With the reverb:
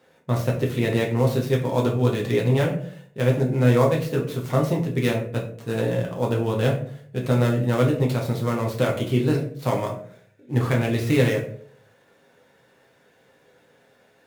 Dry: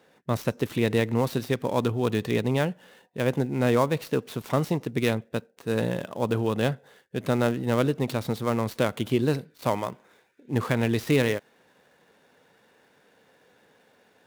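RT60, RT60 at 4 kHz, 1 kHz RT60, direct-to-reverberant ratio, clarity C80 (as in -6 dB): 0.55 s, 0.30 s, 0.45 s, -2.0 dB, 12.0 dB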